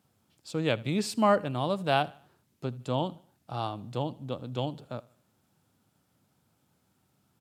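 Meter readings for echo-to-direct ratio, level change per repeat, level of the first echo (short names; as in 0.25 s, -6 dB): -21.5 dB, -8.0 dB, -22.5 dB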